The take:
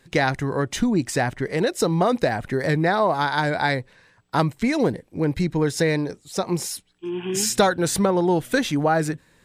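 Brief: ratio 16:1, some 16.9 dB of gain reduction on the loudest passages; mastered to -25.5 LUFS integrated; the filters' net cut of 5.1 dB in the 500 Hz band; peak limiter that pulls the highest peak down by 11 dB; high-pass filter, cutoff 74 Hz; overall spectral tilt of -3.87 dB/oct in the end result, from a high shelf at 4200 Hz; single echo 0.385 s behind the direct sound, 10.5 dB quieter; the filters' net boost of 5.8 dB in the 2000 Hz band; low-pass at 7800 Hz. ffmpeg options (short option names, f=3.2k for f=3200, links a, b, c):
-af "highpass=74,lowpass=7.8k,equalizer=f=500:t=o:g=-7,equalizer=f=2k:t=o:g=7,highshelf=f=4.2k:g=5,acompressor=threshold=-31dB:ratio=16,alimiter=level_in=1.5dB:limit=-24dB:level=0:latency=1,volume=-1.5dB,aecho=1:1:385:0.299,volume=10.5dB"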